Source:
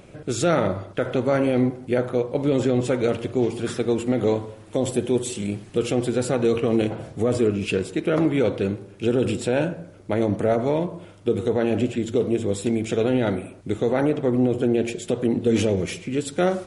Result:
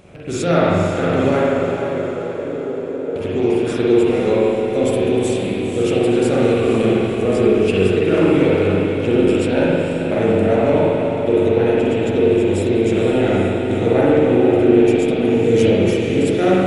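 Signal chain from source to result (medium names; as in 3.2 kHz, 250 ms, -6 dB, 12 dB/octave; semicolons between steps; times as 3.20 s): rattle on loud lows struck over -36 dBFS, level -31 dBFS; 1.42–3.16 s: ladder band-pass 500 Hz, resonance 35%; echo that smears into a reverb 500 ms, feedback 55%, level -7.5 dB; spring tank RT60 1.9 s, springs 42/53 ms, chirp 35 ms, DRR -6.5 dB; trim -1 dB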